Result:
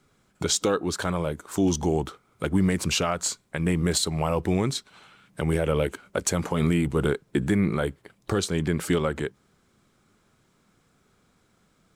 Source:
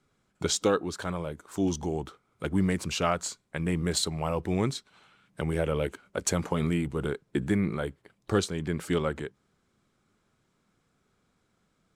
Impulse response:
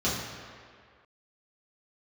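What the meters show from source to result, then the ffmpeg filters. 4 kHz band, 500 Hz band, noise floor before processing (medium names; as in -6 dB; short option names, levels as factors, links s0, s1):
+4.5 dB, +3.5 dB, -73 dBFS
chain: -af "highshelf=f=9200:g=4.5,alimiter=limit=0.112:level=0:latency=1:release=164,volume=2.24"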